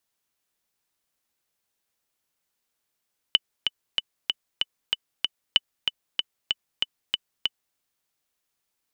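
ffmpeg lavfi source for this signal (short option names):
-f lavfi -i "aevalsrc='pow(10,(-3.5-6*gte(mod(t,7*60/190),60/190))/20)*sin(2*PI*2990*mod(t,60/190))*exp(-6.91*mod(t,60/190)/0.03)':d=4.42:s=44100"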